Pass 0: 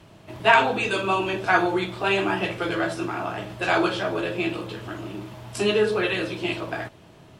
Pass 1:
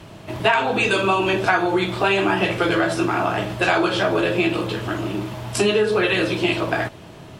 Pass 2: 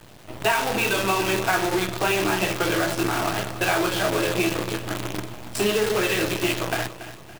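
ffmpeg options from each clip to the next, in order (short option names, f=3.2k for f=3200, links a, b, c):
-af "acompressor=threshold=-24dB:ratio=6,volume=9dB"
-af "flanger=delay=6.3:depth=5.3:regen=-77:speed=1:shape=sinusoidal,acrusher=bits=5:dc=4:mix=0:aa=0.000001,aecho=1:1:283|566|849|1132:0.211|0.0845|0.0338|0.0135"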